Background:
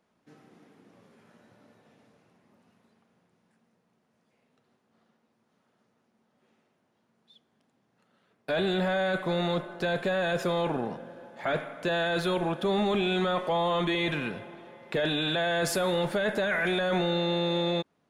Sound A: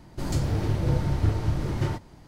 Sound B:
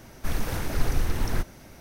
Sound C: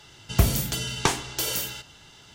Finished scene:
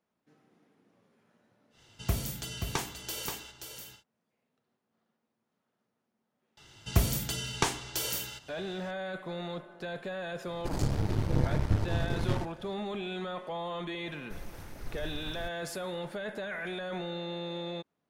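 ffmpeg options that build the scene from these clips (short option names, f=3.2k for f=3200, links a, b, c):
-filter_complex "[3:a]asplit=2[a][b];[0:a]volume=-10dB[c];[a]aecho=1:1:529:0.447[d];[1:a]aeval=exprs='if(lt(val(0),0),0.251*val(0),val(0))':c=same[e];[d]atrim=end=2.34,asetpts=PTS-STARTPTS,volume=-10.5dB,afade=t=in:d=0.1,afade=t=out:st=2.24:d=0.1,adelay=1700[f];[b]atrim=end=2.34,asetpts=PTS-STARTPTS,volume=-5.5dB,afade=t=in:d=0.004:c=hsin,afade=t=out:st=2.336:d=0.004:c=hsin,adelay=6570[g];[e]atrim=end=2.27,asetpts=PTS-STARTPTS,volume=-1dB,afade=t=in:d=0.004:c=hsin,afade=t=out:st=2.266:d=0.004:c=hsin,adelay=10470[h];[2:a]atrim=end=1.8,asetpts=PTS-STARTPTS,volume=-16.5dB,afade=t=in:d=0.004:c=hsin,afade=t=out:st=1.796:d=0.004:c=hsin,adelay=14060[i];[c][f][g][h][i]amix=inputs=5:normalize=0"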